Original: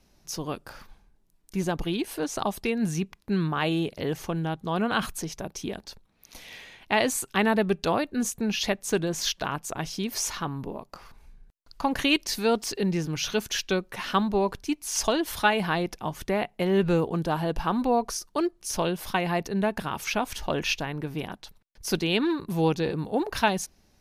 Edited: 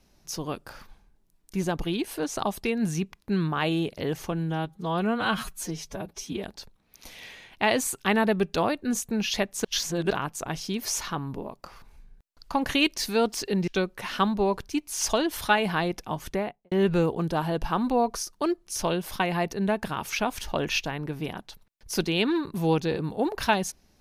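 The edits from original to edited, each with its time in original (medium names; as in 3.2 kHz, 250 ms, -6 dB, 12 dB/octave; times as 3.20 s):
4.32–5.73 s: stretch 1.5×
8.94–9.40 s: reverse
12.97–13.62 s: delete
16.21–16.66 s: studio fade out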